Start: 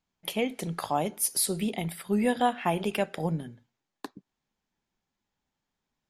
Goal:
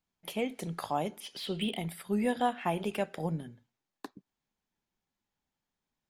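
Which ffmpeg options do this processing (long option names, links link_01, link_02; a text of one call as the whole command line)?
ffmpeg -i in.wav -filter_complex "[0:a]asettb=1/sr,asplit=3[link_01][link_02][link_03];[link_01]atrim=end=1.204[link_04];[link_02]atrim=start=1.2:end=1.77,asetpts=PTS-STARTPTS,afade=type=in:duration=0.004:curve=qsin,afade=type=out:start_time=0.566:duration=0.004:curve=qsin,lowpass=frequency=3100:width_type=q:width=9.3[link_05];[link_03]atrim=start=1.766[link_06];[link_04][link_05]acrossfade=duration=0.004:curve1=hsin:curve2=qsin[link_07];[link_07][link_06]acrossfade=duration=0.004:curve1=qsin:curve2=hsin,acrossover=split=1800[link_08][link_09];[link_09]asoftclip=type=tanh:threshold=-32dB[link_10];[link_08][link_10]amix=inputs=2:normalize=0,volume=-4dB" out.wav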